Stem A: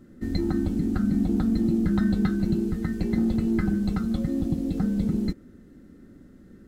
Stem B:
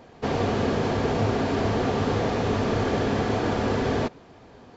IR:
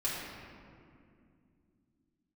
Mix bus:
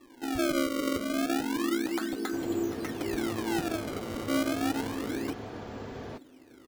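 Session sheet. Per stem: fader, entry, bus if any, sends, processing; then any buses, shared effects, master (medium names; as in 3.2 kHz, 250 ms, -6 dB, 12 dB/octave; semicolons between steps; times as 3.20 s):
+0.5 dB, 0.00 s, no send, Chebyshev high-pass 260 Hz, order 6; decimation with a swept rate 29×, swing 160% 0.3 Hz
-16.0 dB, 2.10 s, no send, none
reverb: none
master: none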